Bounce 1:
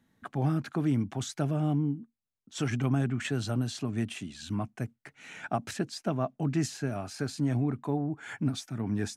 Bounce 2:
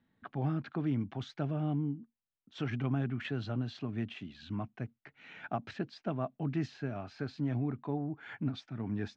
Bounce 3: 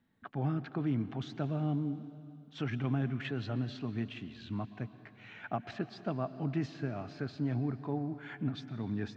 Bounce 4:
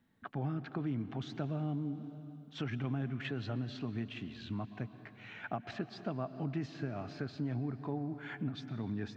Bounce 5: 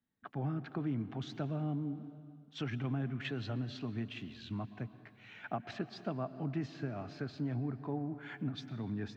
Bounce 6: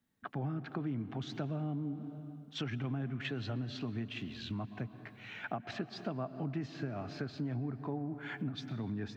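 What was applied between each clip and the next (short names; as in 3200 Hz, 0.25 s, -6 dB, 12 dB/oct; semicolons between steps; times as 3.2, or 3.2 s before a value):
LPF 4000 Hz 24 dB/oct; gain -5 dB
plate-style reverb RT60 2.5 s, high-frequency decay 0.95×, pre-delay 0.105 s, DRR 13.5 dB
compressor 2:1, threshold -38 dBFS, peak gain reduction 6.5 dB; gain +1.5 dB
three-band expander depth 40%
compressor 2:1, threshold -46 dBFS, peak gain reduction 8.5 dB; gain +6.5 dB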